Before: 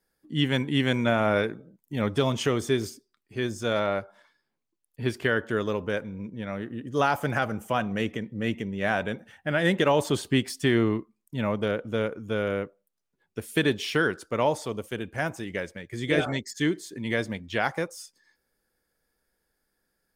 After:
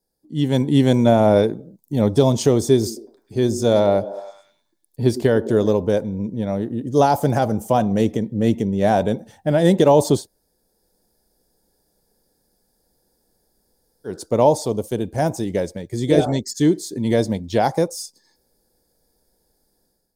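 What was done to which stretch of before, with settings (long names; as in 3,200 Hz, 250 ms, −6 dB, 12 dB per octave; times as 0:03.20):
0:02.76–0:05.72: echo through a band-pass that steps 103 ms, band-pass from 290 Hz, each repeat 0.7 octaves, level −11 dB
0:10.20–0:14.12: fill with room tone, crossfade 0.16 s
whole clip: flat-topped bell 1,900 Hz −15 dB; automatic gain control gain up to 11.5 dB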